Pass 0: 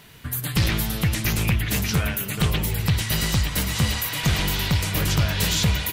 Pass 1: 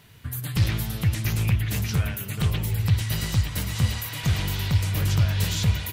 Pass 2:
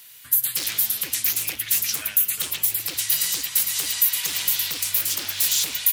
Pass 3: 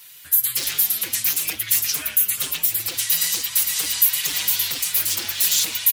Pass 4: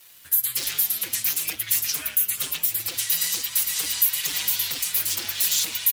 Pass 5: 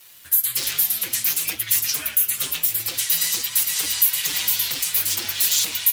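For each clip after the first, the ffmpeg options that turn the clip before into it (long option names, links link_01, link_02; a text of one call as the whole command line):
ffmpeg -i in.wav -af "equalizer=frequency=100:width=1.9:gain=10.5,volume=-6.5dB" out.wav
ffmpeg -i in.wav -af "acontrast=57,aeval=exprs='0.188*(abs(mod(val(0)/0.188+3,4)-2)-1)':channel_layout=same,aderivative,volume=6.5dB" out.wav
ffmpeg -i in.wav -filter_complex "[0:a]asplit=2[link_01][link_02];[link_02]adelay=5.4,afreqshift=1.7[link_03];[link_01][link_03]amix=inputs=2:normalize=1,volume=5dB" out.wav
ffmpeg -i in.wav -filter_complex "[0:a]asplit=2[link_01][link_02];[link_02]acompressor=threshold=-28dB:ratio=6,volume=-2.5dB[link_03];[link_01][link_03]amix=inputs=2:normalize=0,aeval=exprs='sgn(val(0))*max(abs(val(0))-0.00794,0)':channel_layout=same,volume=-4.5dB" out.wav
ffmpeg -i in.wav -af "flanger=delay=7.8:depth=9.4:regen=-54:speed=0.56:shape=sinusoidal,volume=7dB" out.wav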